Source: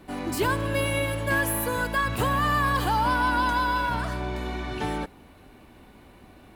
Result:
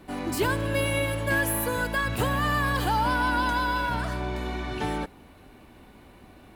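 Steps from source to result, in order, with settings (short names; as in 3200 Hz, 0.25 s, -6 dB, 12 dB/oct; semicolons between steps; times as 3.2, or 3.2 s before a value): dynamic EQ 1100 Hz, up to -5 dB, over -38 dBFS, Q 5.1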